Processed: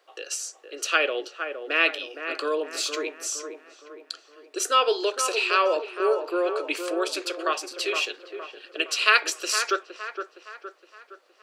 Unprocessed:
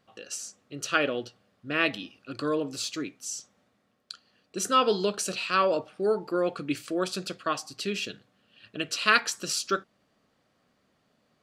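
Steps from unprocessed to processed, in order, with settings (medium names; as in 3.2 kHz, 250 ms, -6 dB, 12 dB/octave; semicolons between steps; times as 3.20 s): steep high-pass 350 Hz 48 dB/octave; in parallel at +1 dB: compression, threshold -36 dBFS, peak gain reduction 19 dB; on the sum: feedback echo behind a low-pass 465 ms, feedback 47%, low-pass 2 kHz, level -7.5 dB; dynamic bell 2.5 kHz, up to +5 dB, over -41 dBFS, Q 2.5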